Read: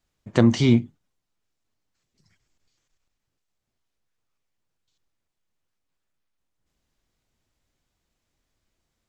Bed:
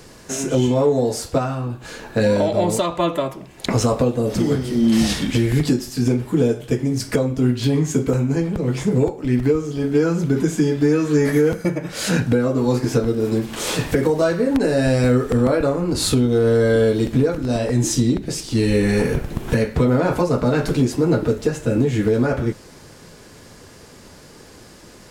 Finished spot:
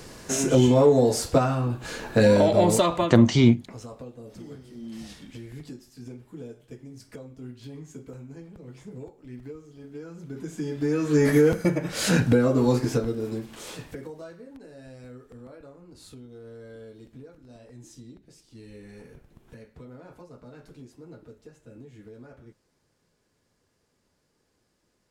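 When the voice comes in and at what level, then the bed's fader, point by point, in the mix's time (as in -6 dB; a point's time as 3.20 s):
2.75 s, +0.5 dB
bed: 2.96 s -0.5 dB
3.29 s -23 dB
10.11 s -23 dB
11.26 s -2 dB
12.64 s -2 dB
14.59 s -28.5 dB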